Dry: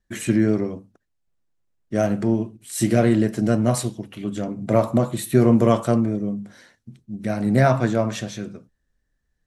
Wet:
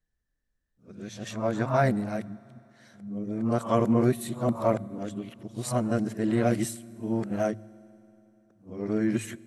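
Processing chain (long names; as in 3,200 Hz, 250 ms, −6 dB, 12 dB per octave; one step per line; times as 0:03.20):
played backwards from end to start
dynamic equaliser 990 Hz, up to +5 dB, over −33 dBFS, Q 1.2
hum removal 53.63 Hz, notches 3
on a send: convolution reverb RT60 3.2 s, pre-delay 4 ms, DRR 22 dB
on the sum: level −8 dB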